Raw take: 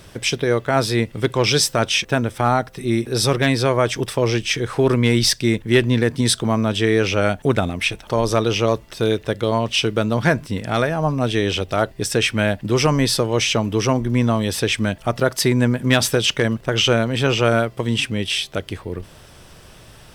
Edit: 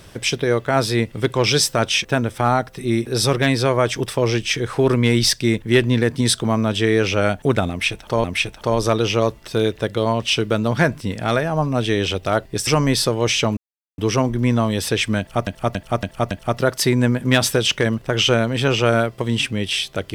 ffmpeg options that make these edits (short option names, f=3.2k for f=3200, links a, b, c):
-filter_complex "[0:a]asplit=8[a][b][c][d][e][f][g][h];[a]atrim=end=8.242[i];[b]atrim=start=7.698:end=12.132[j];[c]atrim=start=12.788:end=13.69,asetpts=PTS-STARTPTS,afade=t=out:st=0.898:d=0.004:c=hsin,apad=pad_dur=0.41[k];[d]atrim=start=13.69:end=15.182,asetpts=PTS-STARTPTS,afade=t=in:d=0.004:c=hsin[l];[e]atrim=start=14.898:end=15.182[m];[f]atrim=start=14.898:end=15.182[n];[g]atrim=start=14.898:end=15.182[o];[h]atrim=start=14.898[p];[i][j]acrossfade=d=0.004:c1=hsin:c2=hsin[q];[k][l]concat=n=2:v=0:a=1[r];[q][r]acrossfade=d=0.004:c1=hsin:c2=hsin[s];[s][m]acrossfade=d=0.004:c1=hsin:c2=hsin[t];[t][n]acrossfade=d=0.004:c1=hsin:c2=hsin[u];[u][o]acrossfade=d=0.004:c1=hsin:c2=hsin[v];[v][p]acrossfade=d=0.004:c1=hsin:c2=hsin"